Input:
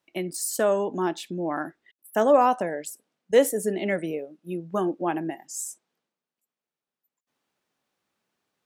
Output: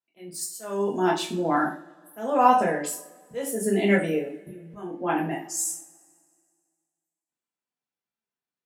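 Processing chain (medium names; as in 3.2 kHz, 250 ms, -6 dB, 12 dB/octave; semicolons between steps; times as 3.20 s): gate -48 dBFS, range -22 dB; slow attack 465 ms; two-slope reverb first 0.37 s, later 2 s, from -26 dB, DRR -5 dB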